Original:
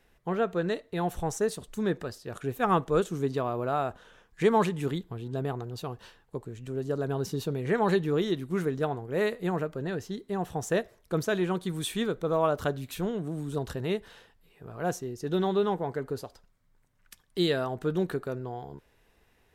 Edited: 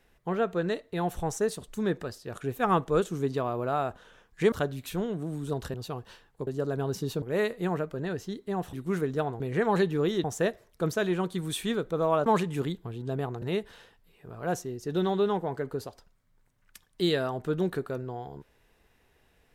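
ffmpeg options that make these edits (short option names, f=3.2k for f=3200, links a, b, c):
-filter_complex "[0:a]asplit=10[a][b][c][d][e][f][g][h][i][j];[a]atrim=end=4.522[k];[b]atrim=start=12.568:end=13.792[l];[c]atrim=start=5.678:end=6.412[m];[d]atrim=start=6.778:end=7.532[n];[e]atrim=start=9.038:end=10.552[o];[f]atrim=start=8.368:end=9.042[p];[g]atrim=start=7.528:end=8.372[q];[h]atrim=start=10.548:end=12.572[r];[i]atrim=start=4.518:end=5.682[s];[j]atrim=start=13.788[t];[k][l]acrossfade=d=0.004:c1=hsin:c2=hsin[u];[u][m]acrossfade=d=0.004:c1=hsin:c2=hsin[v];[v][n]acrossfade=d=0.004:c1=hsin:c2=hsin[w];[w][o]acrossfade=d=0.004:c1=hsin:c2=hsin[x];[x][p]acrossfade=d=0.004:c1=hsin:c2=hsin[y];[y][q]acrossfade=d=0.004:c1=hsin:c2=hsin[z];[z][r]acrossfade=d=0.004:c1=hsin:c2=hsin[aa];[aa][s]acrossfade=d=0.004:c1=hsin:c2=hsin[ab];[ab][t]acrossfade=d=0.004:c1=hsin:c2=hsin"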